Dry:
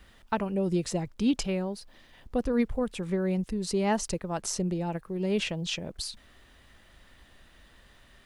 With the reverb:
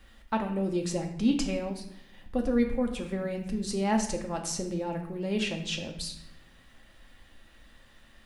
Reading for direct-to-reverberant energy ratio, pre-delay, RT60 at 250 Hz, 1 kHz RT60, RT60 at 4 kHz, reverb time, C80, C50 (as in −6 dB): 2.0 dB, 4 ms, 1.1 s, 0.75 s, 0.60 s, 0.75 s, 10.5 dB, 8.0 dB